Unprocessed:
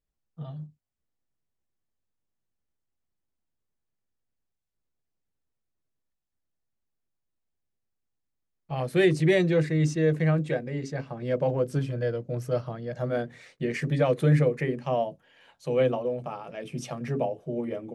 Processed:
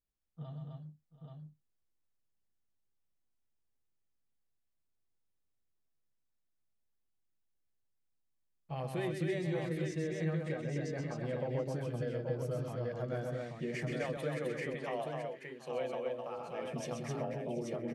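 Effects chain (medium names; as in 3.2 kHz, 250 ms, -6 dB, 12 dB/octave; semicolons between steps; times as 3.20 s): 13.91–16.38 s: high-pass 640 Hz 6 dB/octave; compression 6:1, threshold -28 dBFS, peak gain reduction 11.5 dB; multi-tap echo 129/259/732/831 ms -6/-3.5/-17.5/-5 dB; trim -7 dB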